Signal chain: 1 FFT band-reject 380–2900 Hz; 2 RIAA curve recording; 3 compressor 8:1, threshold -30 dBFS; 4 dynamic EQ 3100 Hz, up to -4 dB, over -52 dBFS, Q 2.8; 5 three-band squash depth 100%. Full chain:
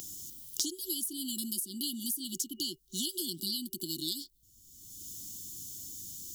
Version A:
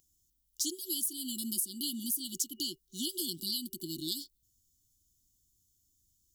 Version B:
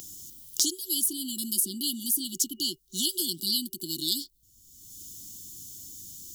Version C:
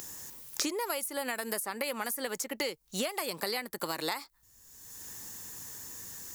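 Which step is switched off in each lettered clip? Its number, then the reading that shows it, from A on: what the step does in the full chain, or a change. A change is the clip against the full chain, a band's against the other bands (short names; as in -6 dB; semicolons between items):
5, crest factor change -4.0 dB; 3, mean gain reduction 4.5 dB; 1, 500 Hz band +15.0 dB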